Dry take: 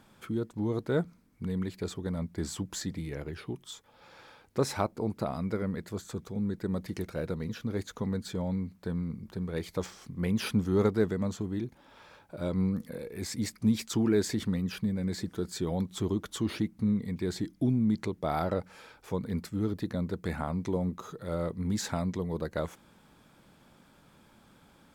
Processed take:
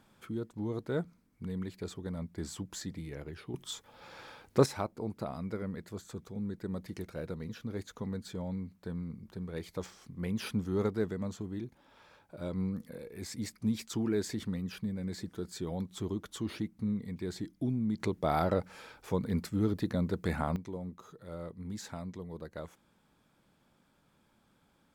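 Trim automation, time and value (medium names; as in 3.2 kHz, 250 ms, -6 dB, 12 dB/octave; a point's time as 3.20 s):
-5 dB
from 3.54 s +3.5 dB
from 4.66 s -5.5 dB
from 18.00 s +1 dB
from 20.56 s -10 dB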